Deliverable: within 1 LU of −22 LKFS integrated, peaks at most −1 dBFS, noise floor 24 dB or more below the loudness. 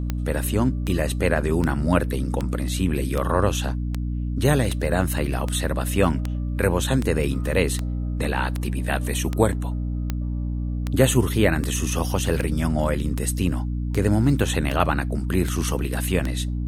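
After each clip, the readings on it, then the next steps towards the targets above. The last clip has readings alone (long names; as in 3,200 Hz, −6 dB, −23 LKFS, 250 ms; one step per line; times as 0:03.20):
number of clicks 22; mains hum 60 Hz; hum harmonics up to 300 Hz; level of the hum −23 dBFS; integrated loudness −23.5 LKFS; sample peak −3.0 dBFS; target loudness −22.0 LKFS
→ click removal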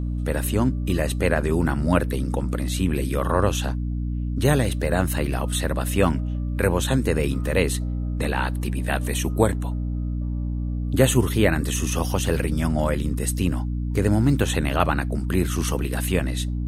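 number of clicks 0; mains hum 60 Hz; hum harmonics up to 300 Hz; level of the hum −23 dBFS
→ hum removal 60 Hz, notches 5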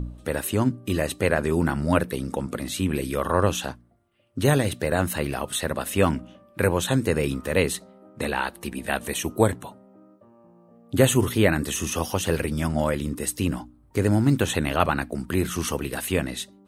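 mains hum none found; integrated loudness −25.0 LKFS; sample peak −2.5 dBFS; target loudness −22.0 LKFS
→ level +3 dB
brickwall limiter −1 dBFS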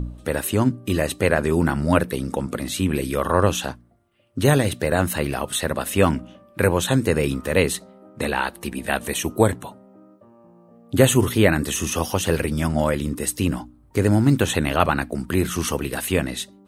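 integrated loudness −22.0 LKFS; sample peak −1.0 dBFS; background noise floor −52 dBFS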